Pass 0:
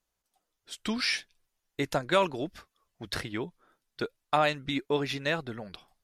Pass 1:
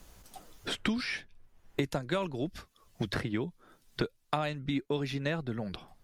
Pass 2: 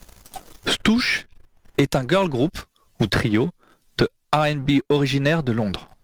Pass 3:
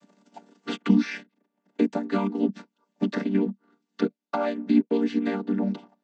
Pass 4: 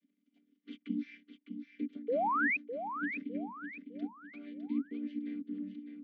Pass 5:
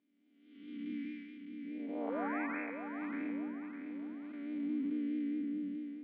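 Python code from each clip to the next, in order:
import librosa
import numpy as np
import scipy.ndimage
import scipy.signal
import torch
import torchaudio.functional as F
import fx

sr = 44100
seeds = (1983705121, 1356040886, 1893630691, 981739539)

y1 = fx.low_shelf(x, sr, hz=300.0, db=11.5)
y1 = fx.band_squash(y1, sr, depth_pct=100)
y1 = F.gain(torch.from_numpy(y1), -6.5).numpy()
y2 = fx.leveller(y1, sr, passes=2)
y2 = F.gain(torch.from_numpy(y2), 6.5).numpy()
y3 = fx.chord_vocoder(y2, sr, chord='minor triad', root=55)
y3 = F.gain(torch.from_numpy(y3), -3.5).numpy()
y4 = fx.vowel_filter(y3, sr, vowel='i')
y4 = fx.spec_paint(y4, sr, seeds[0], shape='rise', start_s=2.08, length_s=0.49, low_hz=440.0, high_hz=2600.0, level_db=-22.0)
y4 = fx.echo_feedback(y4, sr, ms=606, feedback_pct=39, wet_db=-8)
y4 = F.gain(torch.from_numpy(y4), -8.5).numpy()
y5 = fx.spec_blur(y4, sr, span_ms=355.0)
y5 = fx.vibrato(y5, sr, rate_hz=4.7, depth_cents=43.0)
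y5 = fx.bandpass_edges(y5, sr, low_hz=250.0, high_hz=3100.0)
y5 = F.gain(torch.from_numpy(y5), 6.5).numpy()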